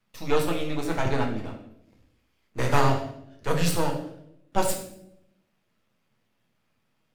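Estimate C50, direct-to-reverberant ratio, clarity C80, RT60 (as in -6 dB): 7.0 dB, 0.5 dB, 9.5 dB, 0.80 s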